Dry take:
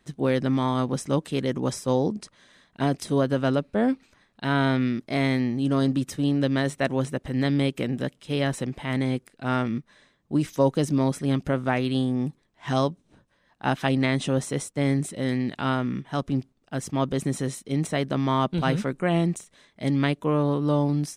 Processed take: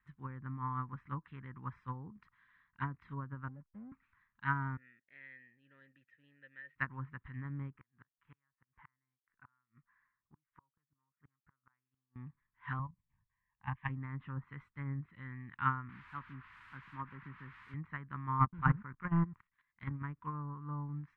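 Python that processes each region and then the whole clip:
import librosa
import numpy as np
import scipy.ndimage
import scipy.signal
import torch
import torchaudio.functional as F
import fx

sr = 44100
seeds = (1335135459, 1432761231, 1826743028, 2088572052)

y = fx.chain(x, sr, fx.cheby_ripple(hz=820.0, ripple_db=9),
    fx.backlash(play_db=-47.5), at=(3.48, 3.92))
y = fx.chain(y, sr, fx.vowel_filter(vowel='e'),
    fx.high_shelf(hz=5900.0, db=10.5), at=(4.77, 6.76))
y = fx.chain(y, sr, fx.lowpass(hz=1400.0, slope=12),
    fx.low_shelf(hz=470.0, db=-11.0),
    fx.gate_flip(shuts_db=-25.0, range_db=-37), at=(7.76, 12.16))
y = fx.chain(y, sr, fx.low_shelf(hz=340.0, db=5.5),
    fx.level_steps(step_db=10),
    fx.fixed_phaser(hz=1400.0, stages=6), at=(12.79, 13.89))
y = fx.chain(y, sr, fx.highpass(hz=160.0, slope=12),
    fx.high_shelf(hz=2100.0, db=-11.0),
    fx.quant_dither(seeds[0], bits=6, dither='triangular'), at=(15.89, 17.74))
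y = fx.chain(y, sr, fx.level_steps(step_db=11),
    fx.leveller(passes=2), at=(18.39, 20.04))
y = fx.env_lowpass_down(y, sr, base_hz=830.0, full_db=-19.0)
y = fx.curve_eq(y, sr, hz=(110.0, 660.0, 1000.0, 1900.0, 5800.0), db=(0, -28, 4, 4, -30))
y = fx.upward_expand(y, sr, threshold_db=-32.0, expansion=2.5)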